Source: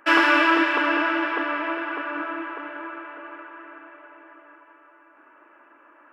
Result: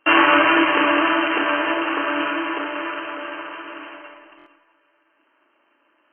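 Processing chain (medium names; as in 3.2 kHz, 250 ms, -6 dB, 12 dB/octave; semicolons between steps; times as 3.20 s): sorted samples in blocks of 16 samples; in parallel at -0.5 dB: compression, threshold -28 dBFS, peak gain reduction 14 dB; on the sum: gate -40 dBFS, range -18 dB; brick-wall FIR low-pass 3.2 kHz; Schroeder reverb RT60 0.59 s, combs from 28 ms, DRR 3 dB; buffer glitch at 4.37 s, samples 1024, times 3; trim +2.5 dB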